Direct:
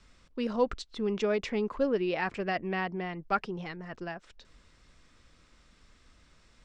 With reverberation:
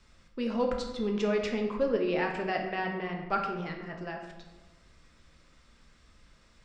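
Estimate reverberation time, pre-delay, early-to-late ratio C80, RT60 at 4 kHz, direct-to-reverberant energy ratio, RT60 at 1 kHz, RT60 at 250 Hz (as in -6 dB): 1.2 s, 9 ms, 7.5 dB, 0.70 s, 2.0 dB, 1.1 s, 1.4 s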